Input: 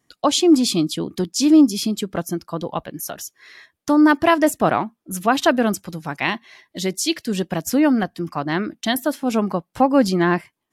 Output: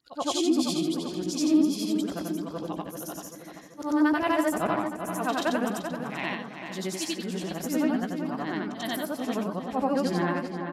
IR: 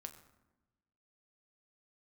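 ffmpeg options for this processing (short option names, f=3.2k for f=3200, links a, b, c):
-filter_complex "[0:a]afftfilt=real='re':imag='-im':win_size=8192:overlap=0.75,asplit=2[a][b];[b]adelay=16,volume=-13dB[c];[a][c]amix=inputs=2:normalize=0,asplit=2[d][e];[e]adelay=387,lowpass=f=3.7k:p=1,volume=-7.5dB,asplit=2[f][g];[g]adelay=387,lowpass=f=3.7k:p=1,volume=0.53,asplit=2[h][i];[i]adelay=387,lowpass=f=3.7k:p=1,volume=0.53,asplit=2[j][k];[k]adelay=387,lowpass=f=3.7k:p=1,volume=0.53,asplit=2[l][m];[m]adelay=387,lowpass=f=3.7k:p=1,volume=0.53,asplit=2[n][o];[o]adelay=387,lowpass=f=3.7k:p=1,volume=0.53[p];[f][h][j][l][n][p]amix=inputs=6:normalize=0[q];[d][q]amix=inputs=2:normalize=0,volume=-5.5dB"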